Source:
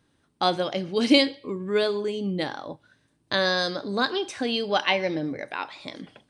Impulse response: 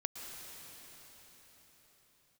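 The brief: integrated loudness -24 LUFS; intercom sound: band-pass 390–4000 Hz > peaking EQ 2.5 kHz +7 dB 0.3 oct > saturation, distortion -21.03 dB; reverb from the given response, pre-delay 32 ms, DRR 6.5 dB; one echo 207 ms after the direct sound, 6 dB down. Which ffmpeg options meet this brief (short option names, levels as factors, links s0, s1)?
-filter_complex "[0:a]aecho=1:1:207:0.501,asplit=2[s0][s1];[1:a]atrim=start_sample=2205,adelay=32[s2];[s1][s2]afir=irnorm=-1:irlink=0,volume=0.447[s3];[s0][s3]amix=inputs=2:normalize=0,highpass=390,lowpass=4000,equalizer=f=2500:t=o:w=0.3:g=7,asoftclip=threshold=0.335,volume=1.26"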